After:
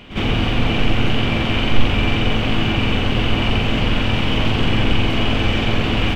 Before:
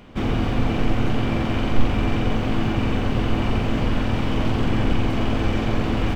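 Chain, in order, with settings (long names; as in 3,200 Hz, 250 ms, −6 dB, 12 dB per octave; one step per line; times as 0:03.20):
parametric band 2,900 Hz +10.5 dB 1 octave
on a send: backwards echo 56 ms −12.5 dB
on the sum: level +2.5 dB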